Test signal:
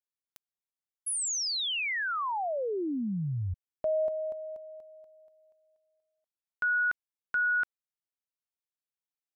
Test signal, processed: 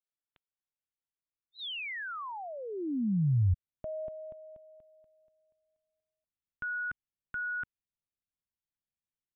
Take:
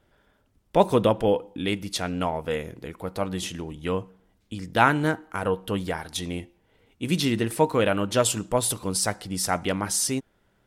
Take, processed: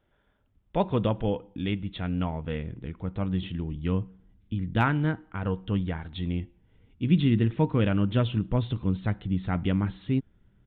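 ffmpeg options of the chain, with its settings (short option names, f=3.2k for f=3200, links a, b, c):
-af "aresample=8000,aresample=44100,asubboost=boost=6.5:cutoff=240,volume=-6.5dB"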